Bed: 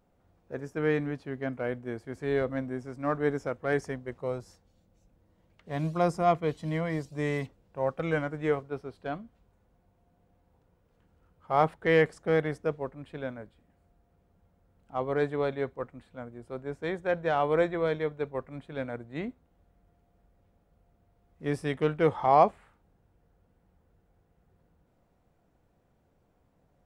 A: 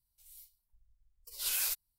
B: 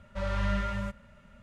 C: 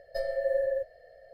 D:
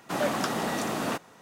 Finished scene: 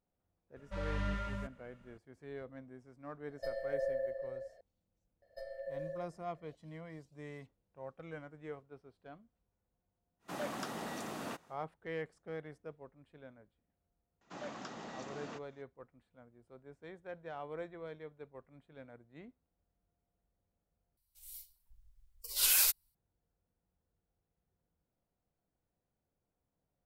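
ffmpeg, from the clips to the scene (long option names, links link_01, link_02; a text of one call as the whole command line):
ffmpeg -i bed.wav -i cue0.wav -i cue1.wav -i cue2.wav -i cue3.wav -filter_complex "[3:a]asplit=2[link_01][link_02];[4:a]asplit=2[link_03][link_04];[0:a]volume=-18dB[link_05];[link_01]asplit=2[link_06][link_07];[link_07]adelay=367.3,volume=-7dB,highshelf=frequency=4000:gain=-8.27[link_08];[link_06][link_08]amix=inputs=2:normalize=0[link_09];[link_04]aresample=16000,aresample=44100[link_10];[1:a]dynaudnorm=framelen=160:gausssize=3:maxgain=7dB[link_11];[link_05]asplit=2[link_12][link_13];[link_12]atrim=end=20.974[link_14];[link_11]atrim=end=1.98,asetpts=PTS-STARTPTS,volume=-2dB[link_15];[link_13]atrim=start=22.946[link_16];[2:a]atrim=end=1.42,asetpts=PTS-STARTPTS,volume=-7.5dB,afade=type=in:duration=0.004:curve=hsin,afade=type=out:start_time=1.416:duration=0.004:curve=hsin,adelay=560[link_17];[link_09]atrim=end=1.33,asetpts=PTS-STARTPTS,volume=-8dB,afade=type=in:duration=0.004:curve=hsin,afade=type=out:start_time=1.326:duration=0.004:curve=hsin,adelay=3280[link_18];[link_02]atrim=end=1.33,asetpts=PTS-STARTPTS,volume=-14.5dB,afade=type=in:duration=0.004:curve=hsin,afade=type=out:start_time=1.326:duration=0.004:curve=hsin,adelay=5220[link_19];[link_03]atrim=end=1.41,asetpts=PTS-STARTPTS,volume=-12.5dB,afade=type=in:duration=0.1,afade=type=out:start_time=1.31:duration=0.1,adelay=10190[link_20];[link_10]atrim=end=1.41,asetpts=PTS-STARTPTS,volume=-17.5dB,afade=type=in:duration=0.004:curve=hsin,afade=type=out:start_time=1.406:duration=0.004:curve=hsin,adelay=14210[link_21];[link_14][link_15]acrossfade=duration=0.004:curve1=hsin:curve2=hsin[link_22];[link_22][link_16]acrossfade=duration=0.004:curve1=hsin:curve2=hsin[link_23];[link_23][link_17][link_18][link_19][link_20][link_21]amix=inputs=6:normalize=0" out.wav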